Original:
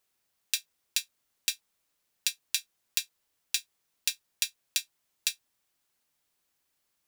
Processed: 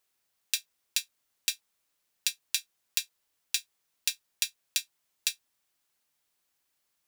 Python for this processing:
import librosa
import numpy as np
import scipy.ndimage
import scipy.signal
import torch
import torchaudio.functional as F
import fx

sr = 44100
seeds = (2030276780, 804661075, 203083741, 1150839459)

y = fx.low_shelf(x, sr, hz=500.0, db=-3.5)